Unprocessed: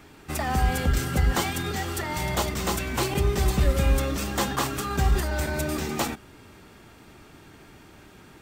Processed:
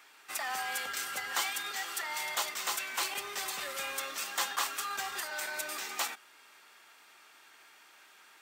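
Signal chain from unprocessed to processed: high-pass 1.1 kHz 12 dB/octave; trim -2.5 dB

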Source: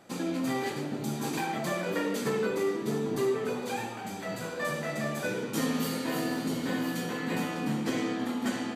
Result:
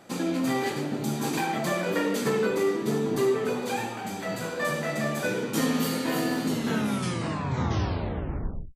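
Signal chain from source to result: tape stop on the ending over 2.30 s; trim +4 dB

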